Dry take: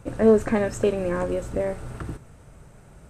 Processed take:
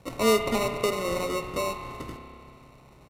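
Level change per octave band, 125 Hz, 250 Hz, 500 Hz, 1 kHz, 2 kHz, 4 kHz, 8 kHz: -7.0 dB, -7.0 dB, -5.0 dB, +4.0 dB, +2.0 dB, +13.0 dB, +6.0 dB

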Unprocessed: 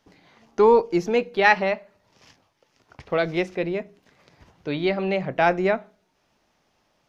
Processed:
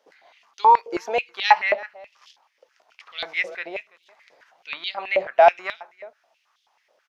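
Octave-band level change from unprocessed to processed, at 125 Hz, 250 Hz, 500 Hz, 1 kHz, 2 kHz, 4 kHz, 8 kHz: under -20 dB, -14.0 dB, -3.0 dB, +5.5 dB, -0.5 dB, +4.5 dB, no reading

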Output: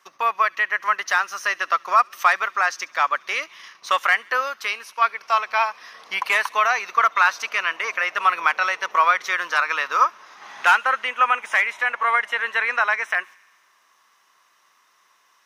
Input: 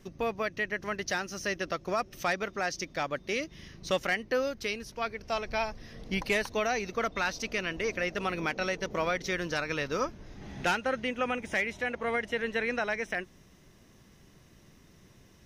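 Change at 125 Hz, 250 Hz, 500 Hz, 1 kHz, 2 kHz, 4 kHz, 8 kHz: under -20 dB, under -10 dB, -1.0 dB, +15.5 dB, +12.0 dB, +7.0 dB, +4.5 dB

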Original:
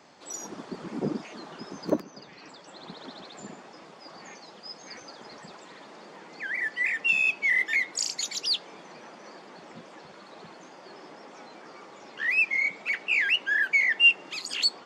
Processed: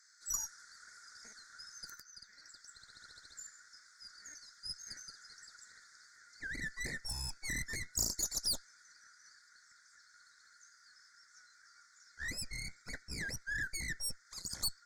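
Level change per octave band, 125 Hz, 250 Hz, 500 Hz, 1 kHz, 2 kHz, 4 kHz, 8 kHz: no reading, -16.5 dB, -20.5 dB, -15.5 dB, -18.0 dB, -13.0 dB, -1.0 dB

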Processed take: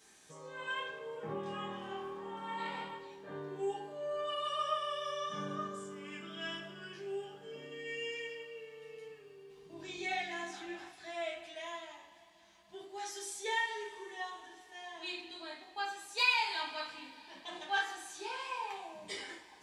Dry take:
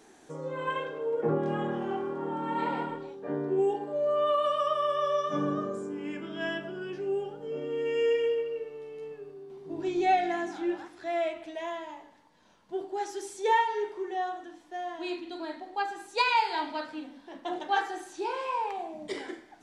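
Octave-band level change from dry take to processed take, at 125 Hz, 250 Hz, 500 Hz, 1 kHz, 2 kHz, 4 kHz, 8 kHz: -11.0 dB, -14.0 dB, -12.5 dB, -10.0 dB, -1.5 dB, 0.0 dB, +2.0 dB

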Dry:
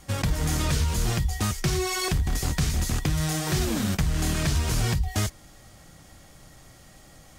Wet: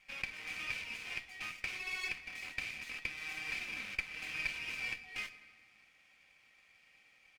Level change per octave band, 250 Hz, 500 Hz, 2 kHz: -30.0 dB, -26.0 dB, -2.5 dB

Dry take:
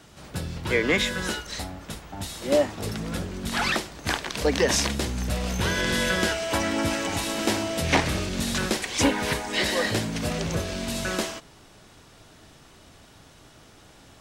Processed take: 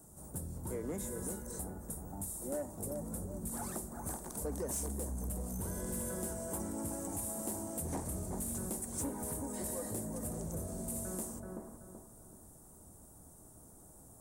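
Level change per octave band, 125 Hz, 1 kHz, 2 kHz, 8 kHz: -11.5 dB, -17.0 dB, -30.0 dB, -7.5 dB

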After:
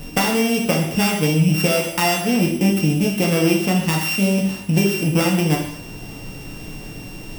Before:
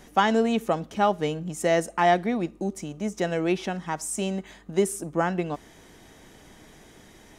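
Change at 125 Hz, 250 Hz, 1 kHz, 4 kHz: +15.0 dB, +10.0 dB, 0.0 dB, +12.5 dB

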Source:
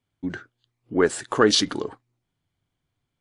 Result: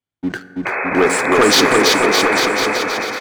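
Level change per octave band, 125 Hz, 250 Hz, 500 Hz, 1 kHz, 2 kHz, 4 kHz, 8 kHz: +6.5 dB, +8.5 dB, +9.5 dB, +14.5 dB, +16.0 dB, +10.0 dB, +11.0 dB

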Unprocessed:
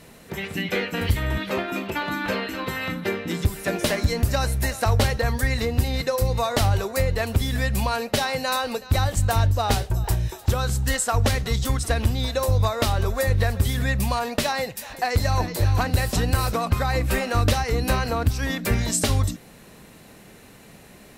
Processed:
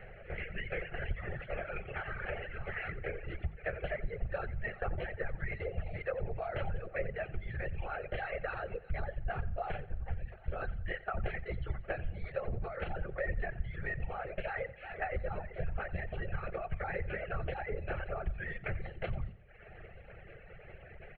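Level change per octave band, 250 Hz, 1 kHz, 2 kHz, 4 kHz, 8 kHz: -20.5 dB, -16.0 dB, -11.5 dB, -27.0 dB, under -40 dB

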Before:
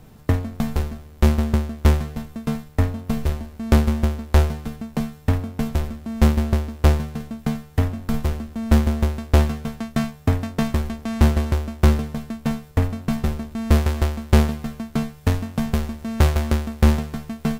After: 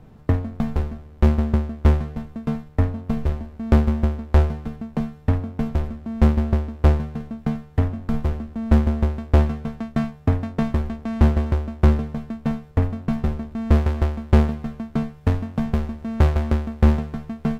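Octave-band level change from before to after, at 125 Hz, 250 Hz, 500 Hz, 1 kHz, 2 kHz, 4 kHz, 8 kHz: 0.0 dB, 0.0 dB, -0.5 dB, -1.5 dB, -4.0 dB, -8.0 dB, under -10 dB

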